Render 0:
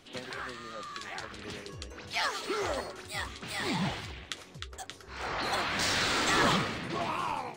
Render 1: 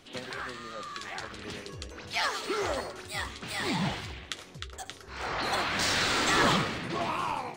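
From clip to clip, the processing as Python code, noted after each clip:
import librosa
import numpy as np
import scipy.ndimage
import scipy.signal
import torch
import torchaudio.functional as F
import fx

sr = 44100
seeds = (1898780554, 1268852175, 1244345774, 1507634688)

y = x + 10.0 ** (-15.5 / 20.0) * np.pad(x, (int(73 * sr / 1000.0), 0))[:len(x)]
y = y * librosa.db_to_amplitude(1.5)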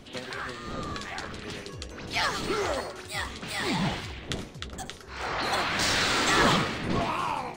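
y = fx.dmg_wind(x, sr, seeds[0], corner_hz=340.0, level_db=-43.0)
y = y * librosa.db_to_amplitude(2.0)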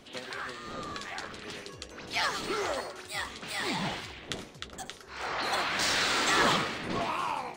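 y = fx.low_shelf(x, sr, hz=190.0, db=-10.5)
y = y * librosa.db_to_amplitude(-2.0)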